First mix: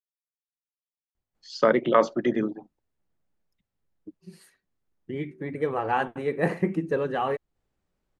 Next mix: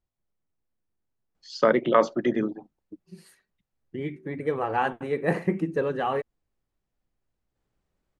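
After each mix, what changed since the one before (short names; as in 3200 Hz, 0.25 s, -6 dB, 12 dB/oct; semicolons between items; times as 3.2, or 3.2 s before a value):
second voice: entry -1.15 s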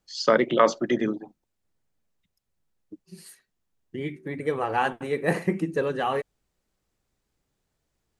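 first voice: entry -1.35 s; master: add high shelf 3600 Hz +11.5 dB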